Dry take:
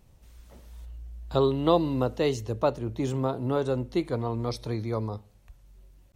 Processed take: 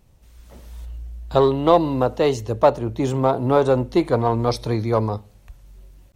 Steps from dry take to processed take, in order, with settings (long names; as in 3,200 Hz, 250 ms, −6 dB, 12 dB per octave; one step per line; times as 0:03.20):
dynamic equaliser 800 Hz, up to +8 dB, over −39 dBFS, Q 0.97
automatic gain control gain up to 6.5 dB
in parallel at −8 dB: hard clipping −16.5 dBFS, distortion −7 dB
on the sum: level −1 dB